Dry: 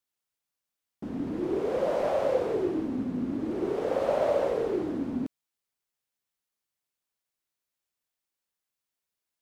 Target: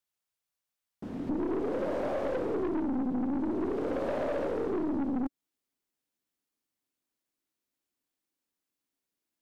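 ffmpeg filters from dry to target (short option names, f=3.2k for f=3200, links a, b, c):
-af "asetnsamples=n=441:p=0,asendcmd='1.29 equalizer g 13.5',equalizer=f=280:t=o:w=0.93:g=-3,aeval=exprs='(tanh(12.6*val(0)+0.4)-tanh(0.4))/12.6':c=same,acompressor=threshold=-30dB:ratio=2.5"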